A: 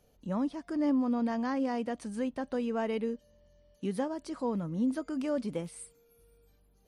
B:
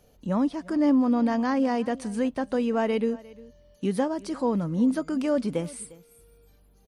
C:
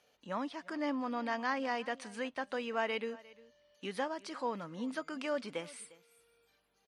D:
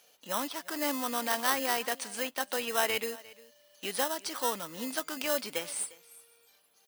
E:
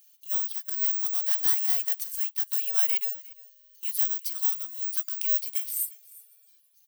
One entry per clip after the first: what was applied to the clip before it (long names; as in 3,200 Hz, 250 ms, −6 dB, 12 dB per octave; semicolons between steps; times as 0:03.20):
single-tap delay 353 ms −21 dB; level +7 dB
resonant band-pass 2,300 Hz, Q 0.75
in parallel at −5.5 dB: decimation without filtering 19×; on the sum: RIAA equalisation recording; level +2.5 dB
bad sample-rate conversion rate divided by 2×, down filtered, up zero stuff; first difference